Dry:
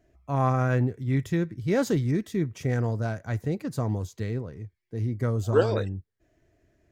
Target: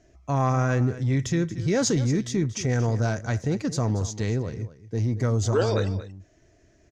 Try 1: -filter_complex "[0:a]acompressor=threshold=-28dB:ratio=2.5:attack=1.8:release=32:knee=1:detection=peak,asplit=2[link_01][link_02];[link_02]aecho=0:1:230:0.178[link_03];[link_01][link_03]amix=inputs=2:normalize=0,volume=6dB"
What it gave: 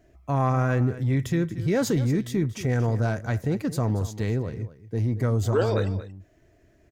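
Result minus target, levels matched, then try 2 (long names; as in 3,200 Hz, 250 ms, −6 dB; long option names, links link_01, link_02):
8,000 Hz band −7.5 dB
-filter_complex "[0:a]acompressor=threshold=-28dB:ratio=2.5:attack=1.8:release=32:knee=1:detection=peak,lowpass=frequency=6200:width_type=q:width=3.1,asplit=2[link_01][link_02];[link_02]aecho=0:1:230:0.178[link_03];[link_01][link_03]amix=inputs=2:normalize=0,volume=6dB"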